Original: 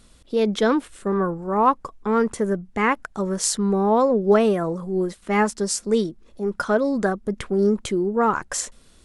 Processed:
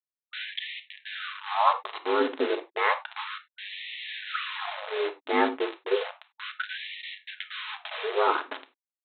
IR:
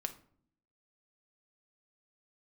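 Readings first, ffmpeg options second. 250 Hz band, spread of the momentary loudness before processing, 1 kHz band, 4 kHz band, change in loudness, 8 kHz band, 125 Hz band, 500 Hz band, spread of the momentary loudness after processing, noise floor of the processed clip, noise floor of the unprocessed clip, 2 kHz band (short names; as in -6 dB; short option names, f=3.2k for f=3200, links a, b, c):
-15.5 dB, 9 LU, -4.5 dB, +1.0 dB, -8.0 dB, under -40 dB, under -40 dB, -9.5 dB, 14 LU, under -85 dBFS, -53 dBFS, -1.5 dB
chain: -filter_complex "[0:a]aeval=exprs='val(0)*sin(2*PI*50*n/s)':c=same,asplit=2[a][b];[b]adelay=280,highpass=300,lowpass=3.4k,asoftclip=type=hard:threshold=-15dB,volume=-16dB[c];[a][c]amix=inputs=2:normalize=0,aresample=8000,acrusher=bits=4:mix=0:aa=0.000001,aresample=44100[d];[1:a]atrim=start_sample=2205,afade=t=out:st=0.15:d=0.01,atrim=end_sample=7056[e];[d][e]afir=irnorm=-1:irlink=0,afftfilt=real='re*gte(b*sr/1024,250*pow(1800/250,0.5+0.5*sin(2*PI*0.32*pts/sr)))':imag='im*gte(b*sr/1024,250*pow(1800/250,0.5+0.5*sin(2*PI*0.32*pts/sr)))':win_size=1024:overlap=0.75"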